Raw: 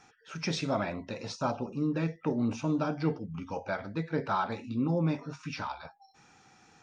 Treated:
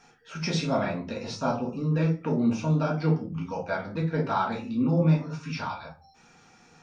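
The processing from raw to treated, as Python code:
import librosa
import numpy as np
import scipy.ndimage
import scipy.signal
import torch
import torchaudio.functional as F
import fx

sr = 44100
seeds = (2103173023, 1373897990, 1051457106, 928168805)

y = fx.room_shoebox(x, sr, seeds[0], volume_m3=140.0, walls='furnished', distance_m=1.7)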